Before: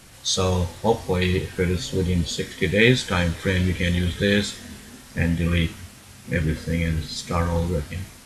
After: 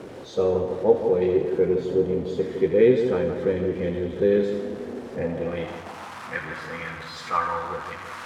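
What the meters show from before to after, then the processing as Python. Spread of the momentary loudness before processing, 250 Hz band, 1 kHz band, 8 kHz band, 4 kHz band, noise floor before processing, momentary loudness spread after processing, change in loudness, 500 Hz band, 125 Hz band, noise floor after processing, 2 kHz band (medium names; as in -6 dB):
11 LU, -3.0 dB, +1.0 dB, under -15 dB, -15.5 dB, -46 dBFS, 14 LU, -1.5 dB, +4.5 dB, -11.5 dB, -39 dBFS, -8.5 dB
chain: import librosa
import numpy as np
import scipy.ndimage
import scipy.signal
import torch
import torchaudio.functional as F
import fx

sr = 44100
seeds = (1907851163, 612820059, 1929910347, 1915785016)

y = x + 0.5 * 10.0 ** (-24.5 / 20.0) * np.sign(x)
y = fx.echo_split(y, sr, split_hz=1700.0, low_ms=162, high_ms=83, feedback_pct=52, wet_db=-7.5)
y = fx.filter_sweep_bandpass(y, sr, from_hz=410.0, to_hz=1200.0, start_s=5.05, end_s=6.35, q=2.4)
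y = y * librosa.db_to_amplitude(4.0)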